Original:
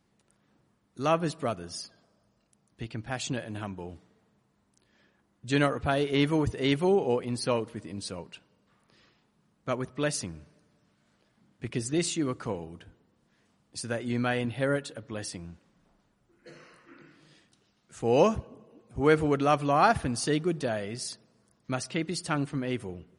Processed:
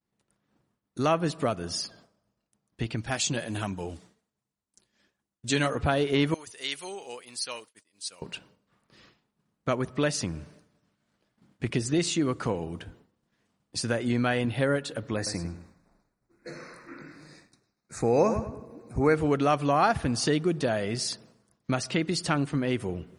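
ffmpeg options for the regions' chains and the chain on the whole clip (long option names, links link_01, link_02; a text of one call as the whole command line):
ffmpeg -i in.wav -filter_complex "[0:a]asettb=1/sr,asplit=3[link_01][link_02][link_03];[link_01]atrim=end=2.954[link_04];[link_02]atrim=start=2.95:end=5.75,asetpts=PTS-STARTPTS,afade=type=in:duration=0.004:curve=qsin,afade=type=out:start_time=2.796:duration=0.004:curve=qsin,equalizer=frequency=8100:width=0.5:gain=11,flanger=delay=0.3:depth=5.7:regen=-45:speed=1.3:shape=triangular[link_05];[link_03]atrim=start=5.746[link_06];[link_04][link_05]acrossfade=duration=0.004:curve1=hsin:curve2=qsin[link_07];[link_07][link_06]acrossfade=duration=0.004:curve1=qsin:curve2=hsin,asettb=1/sr,asplit=3[link_08][link_09][link_10];[link_08]atrim=end=6.344[link_11];[link_09]atrim=start=6.34:end=8.22,asetpts=PTS-STARTPTS,afade=type=in:duration=0.004:curve=qsin,afade=type=out:start_time=1.876:duration=0.004:curve=qsin,agate=range=-33dB:threshold=-36dB:ratio=3:release=100:detection=peak,aderivative[link_12];[link_10]atrim=start=8.216[link_13];[link_11][link_12]acrossfade=duration=0.004:curve1=hsin:curve2=qsin[link_14];[link_14][link_13]acrossfade=duration=0.004:curve1=qsin:curve2=hsin,asettb=1/sr,asplit=3[link_15][link_16][link_17];[link_15]atrim=end=15.164[link_18];[link_16]atrim=start=15.16:end=19.15,asetpts=PTS-STARTPTS,afade=type=in:duration=0.004:curve=qsin,afade=type=out:start_time=3.986:duration=0.004:curve=qsin,asuperstop=centerf=3100:order=8:qfactor=2.5,asplit=2[link_19][link_20];[link_20]adelay=103,lowpass=frequency=4300:poles=1,volume=-10.5dB,asplit=2[link_21][link_22];[link_22]adelay=103,lowpass=frequency=4300:poles=1,volume=0.23,asplit=2[link_23][link_24];[link_24]adelay=103,lowpass=frequency=4300:poles=1,volume=0.23[link_25];[link_19][link_21][link_23][link_25]amix=inputs=4:normalize=0,atrim=end_sample=175959[link_26];[link_17]atrim=start=19.146[link_27];[link_18][link_26]acrossfade=duration=0.004:curve1=hsin:curve2=qsin[link_28];[link_28][link_27]acrossfade=duration=0.004:curve1=qsin:curve2=hsin,acrossover=split=8100[link_29][link_30];[link_30]acompressor=threshold=-53dB:ratio=4:attack=1:release=60[link_31];[link_29][link_31]amix=inputs=2:normalize=0,agate=range=-33dB:threshold=-58dB:ratio=3:detection=peak,acompressor=threshold=-35dB:ratio=2,volume=8.5dB" out.wav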